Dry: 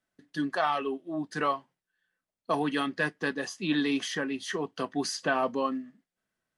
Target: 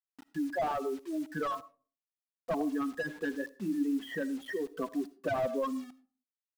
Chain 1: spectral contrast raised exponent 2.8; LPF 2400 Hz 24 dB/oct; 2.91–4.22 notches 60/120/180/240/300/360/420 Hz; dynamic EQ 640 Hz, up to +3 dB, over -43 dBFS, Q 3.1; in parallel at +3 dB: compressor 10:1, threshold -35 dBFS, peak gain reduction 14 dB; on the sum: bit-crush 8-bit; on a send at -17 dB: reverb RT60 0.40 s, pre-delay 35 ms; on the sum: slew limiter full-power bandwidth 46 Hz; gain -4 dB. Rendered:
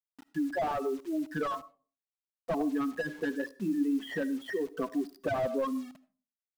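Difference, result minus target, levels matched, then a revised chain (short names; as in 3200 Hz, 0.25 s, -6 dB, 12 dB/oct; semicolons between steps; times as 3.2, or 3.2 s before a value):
compressor: peak gain reduction -8 dB
spectral contrast raised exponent 2.8; LPF 2400 Hz 24 dB/oct; 2.91–4.22 notches 60/120/180/240/300/360/420 Hz; dynamic EQ 640 Hz, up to +3 dB, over -43 dBFS, Q 3.1; in parallel at +3 dB: compressor 10:1, threshold -44 dBFS, peak gain reduction 22 dB; on the sum: bit-crush 8-bit; on a send at -17 dB: reverb RT60 0.40 s, pre-delay 35 ms; on the sum: slew limiter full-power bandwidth 46 Hz; gain -4 dB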